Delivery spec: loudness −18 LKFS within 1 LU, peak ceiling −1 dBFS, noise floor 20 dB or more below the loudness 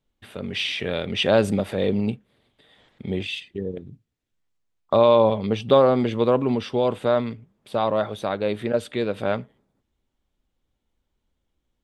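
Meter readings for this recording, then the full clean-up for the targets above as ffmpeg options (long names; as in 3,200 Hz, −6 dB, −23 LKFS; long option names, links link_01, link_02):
integrated loudness −22.5 LKFS; sample peak −4.0 dBFS; target loudness −18.0 LKFS
→ -af "volume=4.5dB,alimiter=limit=-1dB:level=0:latency=1"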